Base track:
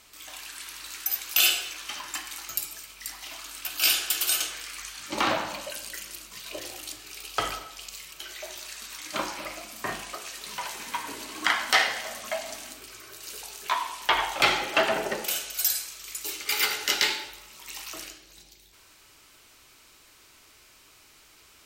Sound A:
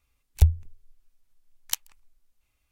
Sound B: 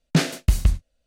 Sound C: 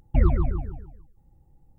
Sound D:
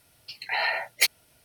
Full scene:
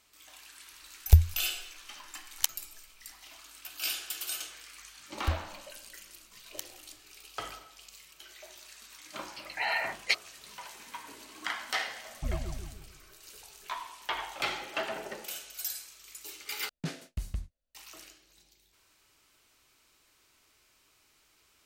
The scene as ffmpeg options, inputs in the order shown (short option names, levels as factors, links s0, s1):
-filter_complex "[1:a]asplit=2[s0][s1];[0:a]volume=0.282[s2];[4:a]lowpass=4500[s3];[s2]asplit=2[s4][s5];[s4]atrim=end=16.694[s6];[2:a]atrim=end=1.06,asetpts=PTS-STARTPTS,volume=0.133[s7];[s5]atrim=start=17.746[s8];[s0]atrim=end=2.71,asetpts=PTS-STARTPTS,afade=t=in:d=0.004:c=hsin,afade=t=out:st=2.706:d=0.004:c=hsin,adelay=710[s9];[s1]atrim=end=2.71,asetpts=PTS-STARTPTS,volume=0.224,afade=t=in:d=0.004:c=hsin,afade=t=out:st=2.706:d=0.004:c=hsin,adelay=4860[s10];[s3]atrim=end=1.44,asetpts=PTS-STARTPTS,volume=0.631,afade=t=in:d=0.004:c=hsin,afade=t=out:st=1.436:d=0.004:c=hsin,adelay=9080[s11];[3:a]atrim=end=1.78,asetpts=PTS-STARTPTS,volume=0.188,afade=t=in:d=0.004:c=hsin,afade=t=out:st=1.776:d=0.004:c=hsin,adelay=12080[s12];[s6][s7]acrossfade=d=0.004:c1=hsin:c2=hsin[s13];[s13][s8]acrossfade=d=0.004:c1=hsin:c2=hsin[s14];[s14][s9][s10][s11][s12]amix=inputs=5:normalize=0"